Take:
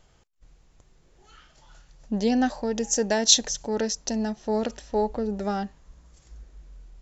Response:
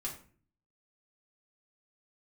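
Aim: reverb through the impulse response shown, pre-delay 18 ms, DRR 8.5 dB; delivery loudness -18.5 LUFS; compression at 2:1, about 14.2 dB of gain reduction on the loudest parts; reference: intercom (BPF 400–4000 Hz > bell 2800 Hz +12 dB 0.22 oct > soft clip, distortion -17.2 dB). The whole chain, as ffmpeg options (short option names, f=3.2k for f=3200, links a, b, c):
-filter_complex "[0:a]acompressor=threshold=-40dB:ratio=2,asplit=2[a][b];[1:a]atrim=start_sample=2205,adelay=18[c];[b][c]afir=irnorm=-1:irlink=0,volume=-8.5dB[d];[a][d]amix=inputs=2:normalize=0,highpass=400,lowpass=4k,equalizer=f=2.8k:t=o:w=0.22:g=12,asoftclip=threshold=-30dB,volume=22.5dB"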